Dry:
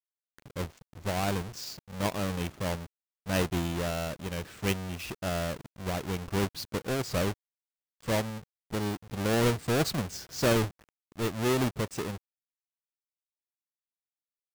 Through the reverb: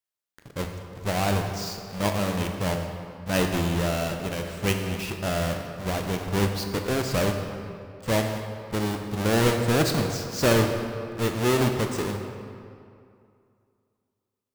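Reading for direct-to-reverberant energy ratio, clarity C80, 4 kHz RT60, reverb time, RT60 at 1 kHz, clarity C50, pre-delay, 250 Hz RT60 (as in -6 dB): 4.0 dB, 6.5 dB, 1.6 s, 2.4 s, 2.5 s, 5.5 dB, 16 ms, 2.5 s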